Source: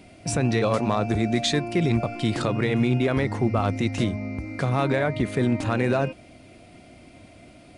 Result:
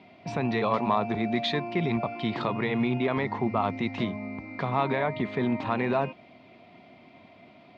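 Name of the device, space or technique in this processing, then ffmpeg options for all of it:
kitchen radio: -af "highpass=200,equalizer=f=310:t=q:w=4:g=-8,equalizer=f=520:t=q:w=4:g=-7,equalizer=f=980:t=q:w=4:g=6,equalizer=f=1.5k:t=q:w=4:g=-7,equalizer=f=2.8k:t=q:w=4:g=-4,lowpass=f=3.6k:w=0.5412,lowpass=f=3.6k:w=1.3066"

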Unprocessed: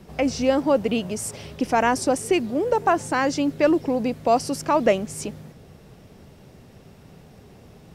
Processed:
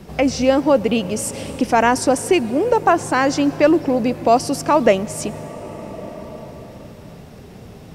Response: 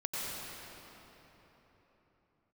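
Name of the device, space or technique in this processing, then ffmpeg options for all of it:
ducked reverb: -filter_complex "[0:a]asplit=3[a][b][c];[1:a]atrim=start_sample=2205[d];[b][d]afir=irnorm=-1:irlink=0[e];[c]apad=whole_len=350457[f];[e][f]sidechaincompress=threshold=-32dB:ratio=8:attack=36:release=972,volume=-7.5dB[g];[a][g]amix=inputs=2:normalize=0,volume=4.5dB"

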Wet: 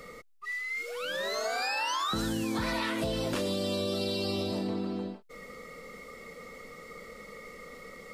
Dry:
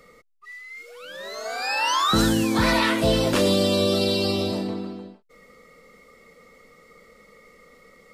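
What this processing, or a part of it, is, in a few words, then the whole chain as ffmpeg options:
serial compression, leveller first: -af "acompressor=threshold=-25dB:ratio=2.5,acompressor=threshold=-35dB:ratio=5,volume=5.5dB"

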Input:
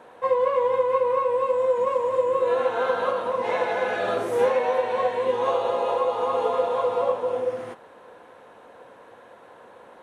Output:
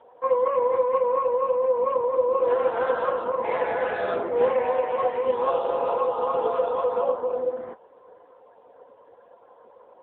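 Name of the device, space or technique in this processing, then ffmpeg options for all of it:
mobile call with aggressive noise cancelling: -filter_complex "[0:a]asplit=3[a][b][c];[a]afade=t=out:st=1.87:d=0.02[d];[b]equalizer=f=370:t=o:w=0.57:g=2.5,afade=t=in:st=1.87:d=0.02,afade=t=out:st=3.37:d=0.02[e];[c]afade=t=in:st=3.37:d=0.02[f];[d][e][f]amix=inputs=3:normalize=0,highpass=150,afftdn=nr=14:nf=-43" -ar 8000 -c:a libopencore_amrnb -b:a 7950

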